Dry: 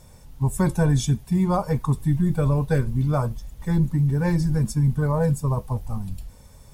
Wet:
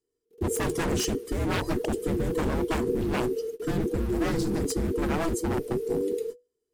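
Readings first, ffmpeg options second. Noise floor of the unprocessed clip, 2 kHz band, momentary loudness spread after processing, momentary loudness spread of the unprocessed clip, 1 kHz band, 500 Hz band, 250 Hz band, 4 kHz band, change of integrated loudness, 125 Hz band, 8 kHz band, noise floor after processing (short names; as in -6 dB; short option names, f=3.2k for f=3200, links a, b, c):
-48 dBFS, +1.0 dB, 4 LU, 9 LU, -3.5 dB, +1.5 dB, -4.0 dB, n/a, -5.5 dB, -12.5 dB, +1.5 dB, -81 dBFS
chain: -af "agate=range=-37dB:threshold=-37dB:ratio=16:detection=peak,aeval=exprs='0.0631*(abs(mod(val(0)/0.0631+3,4)-2)-1)':c=same,afreqshift=-490,volume=2.5dB"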